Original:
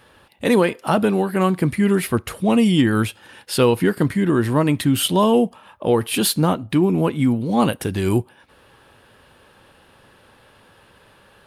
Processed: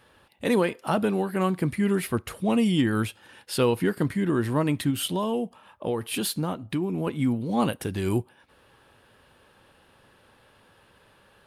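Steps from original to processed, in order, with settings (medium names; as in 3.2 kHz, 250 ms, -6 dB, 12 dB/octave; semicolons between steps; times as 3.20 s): 4.90–7.07 s: compression 2.5:1, threshold -19 dBFS, peak gain reduction 6 dB; trim -6.5 dB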